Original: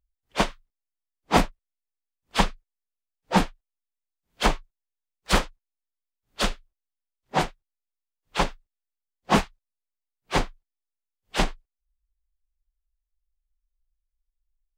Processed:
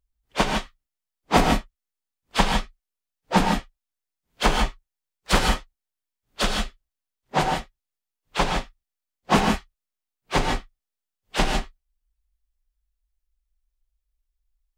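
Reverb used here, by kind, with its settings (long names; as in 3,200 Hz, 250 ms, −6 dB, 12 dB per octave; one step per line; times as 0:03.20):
reverb whose tail is shaped and stops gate 180 ms rising, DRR 2 dB
level +1 dB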